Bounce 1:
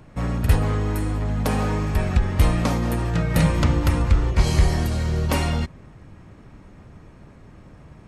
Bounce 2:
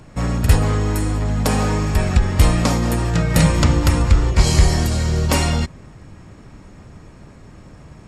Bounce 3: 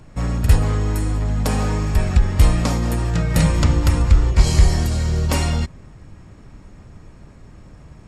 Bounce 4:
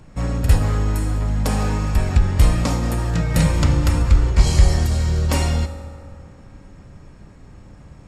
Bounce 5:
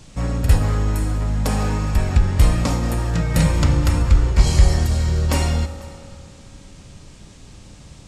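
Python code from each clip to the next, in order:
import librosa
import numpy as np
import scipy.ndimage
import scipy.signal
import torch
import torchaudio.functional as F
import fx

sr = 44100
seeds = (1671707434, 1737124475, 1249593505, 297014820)

y1 = fx.peak_eq(x, sr, hz=6500.0, db=11.0, octaves=0.82)
y1 = fx.notch(y1, sr, hz=6200.0, q=7.0)
y1 = y1 * librosa.db_to_amplitude(4.0)
y2 = fx.low_shelf(y1, sr, hz=72.0, db=8.0)
y2 = y2 * librosa.db_to_amplitude(-4.0)
y3 = fx.rev_fdn(y2, sr, rt60_s=2.6, lf_ratio=0.85, hf_ratio=0.5, size_ms=11.0, drr_db=7.0)
y3 = y3 * librosa.db_to_amplitude(-1.0)
y4 = y3 + 10.0 ** (-22.5 / 20.0) * np.pad(y3, (int(494 * sr / 1000.0), 0))[:len(y3)]
y4 = fx.dmg_noise_band(y4, sr, seeds[0], low_hz=2100.0, high_hz=8500.0, level_db=-53.0)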